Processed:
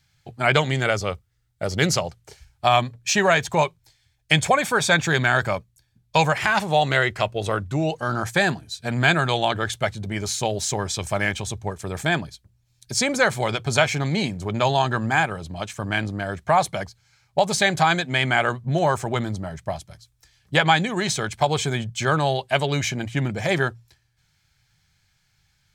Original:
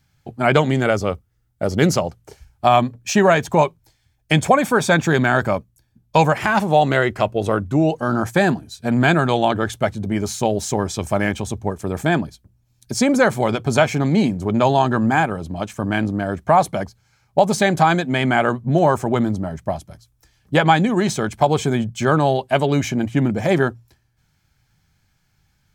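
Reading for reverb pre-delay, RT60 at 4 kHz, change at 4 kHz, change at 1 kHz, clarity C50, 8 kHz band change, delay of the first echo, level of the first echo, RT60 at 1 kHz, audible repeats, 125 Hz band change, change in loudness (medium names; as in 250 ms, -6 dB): no reverb, no reverb, +3.0 dB, -4.0 dB, no reverb, +1.5 dB, no echo, no echo, no reverb, no echo, -4.0 dB, -3.5 dB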